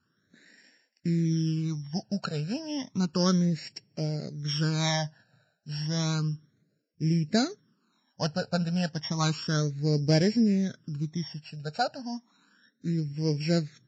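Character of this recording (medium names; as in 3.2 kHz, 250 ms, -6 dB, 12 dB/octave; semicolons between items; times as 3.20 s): a buzz of ramps at a fixed pitch in blocks of 8 samples; phasing stages 12, 0.32 Hz, lowest notch 340–1200 Hz; Vorbis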